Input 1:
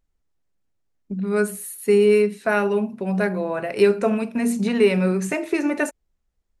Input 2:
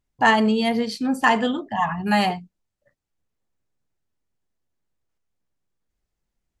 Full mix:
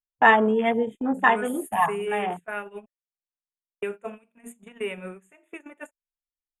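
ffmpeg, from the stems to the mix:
ffmpeg -i stem1.wav -i stem2.wav -filter_complex "[0:a]volume=-8dB,asplit=3[link_01][link_02][link_03];[link_01]atrim=end=2.86,asetpts=PTS-STARTPTS,afade=type=out:start_time=2.856:duration=0.004:curve=hsin[link_04];[link_02]atrim=start=2.86:end=3.82,asetpts=PTS-STARTPTS,volume=0[link_05];[link_03]atrim=start=3.82,asetpts=PTS-STARTPTS,afade=type=in:duration=0.004:curve=hsin[link_06];[link_04][link_05][link_06]concat=n=3:v=0:a=1,asplit=2[link_07][link_08];[1:a]acrossover=split=3600[link_09][link_10];[link_10]acompressor=threshold=-39dB:ratio=4:attack=1:release=60[link_11];[link_09][link_11]amix=inputs=2:normalize=0,afwtdn=0.0355,equalizer=frequency=390:width=1.1:gain=7,volume=2dB[link_12];[link_08]apad=whole_len=291078[link_13];[link_12][link_13]sidechaincompress=threshold=-32dB:ratio=4:attack=29:release=179[link_14];[link_07][link_14]amix=inputs=2:normalize=0,agate=range=-21dB:threshold=-27dB:ratio=16:detection=peak,asuperstop=centerf=4900:order=20:qfactor=1.7,equalizer=frequency=160:width=0.34:gain=-10" out.wav

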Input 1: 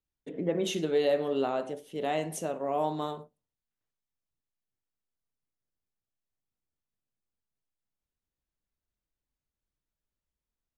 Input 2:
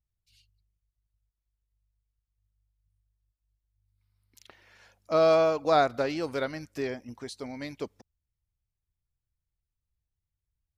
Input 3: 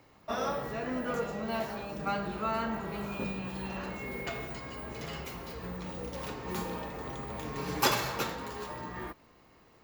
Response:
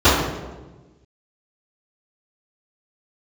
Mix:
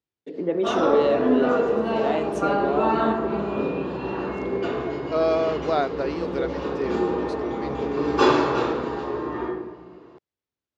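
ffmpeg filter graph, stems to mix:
-filter_complex "[0:a]volume=1.5dB,asplit=2[link_01][link_02];[1:a]volume=-2dB[link_03];[2:a]adelay=350,volume=-2dB,asplit=2[link_04][link_05];[link_05]volume=-17.5dB[link_06];[link_02]apad=whole_len=449047[link_07];[link_04][link_07]sidechaingate=range=-33dB:threshold=-37dB:ratio=16:detection=peak[link_08];[3:a]atrim=start_sample=2205[link_09];[link_06][link_09]afir=irnorm=-1:irlink=0[link_10];[link_01][link_03][link_08][link_10]amix=inputs=4:normalize=0,highpass=180,lowpass=5100,equalizer=frequency=380:width_type=o:width=0.79:gain=6"

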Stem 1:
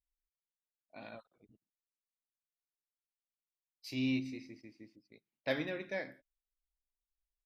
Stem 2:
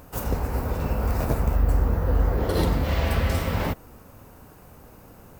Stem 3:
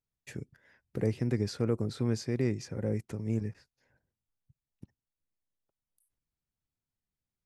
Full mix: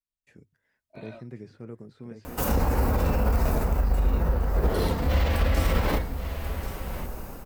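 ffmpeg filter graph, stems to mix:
ffmpeg -i stem1.wav -i stem2.wav -i stem3.wav -filter_complex "[0:a]aecho=1:1:3.2:0.89,volume=-10.5dB[link_01];[1:a]asubboost=boost=3.5:cutoff=66,adelay=2250,volume=-1.5dB,asplit=2[link_02][link_03];[link_03]volume=-5.5dB[link_04];[2:a]acrossover=split=3000[link_05][link_06];[link_06]acompressor=threshold=-59dB:ratio=4:attack=1:release=60[link_07];[link_05][link_07]amix=inputs=2:normalize=0,volume=-7dB,asplit=2[link_08][link_09];[link_09]volume=-6dB[link_10];[link_01][link_02]amix=inputs=2:normalize=0,dynaudnorm=framelen=160:gausssize=5:maxgain=15dB,alimiter=limit=-11dB:level=0:latency=1:release=33,volume=0dB[link_11];[link_04][link_10]amix=inputs=2:normalize=0,aecho=0:1:1084:1[link_12];[link_08][link_11][link_12]amix=inputs=3:normalize=0,bandreject=frequency=50:width_type=h:width=6,bandreject=frequency=100:width_type=h:width=6,flanger=delay=3.6:depth=1.8:regen=-64:speed=0.36:shape=sinusoidal" out.wav

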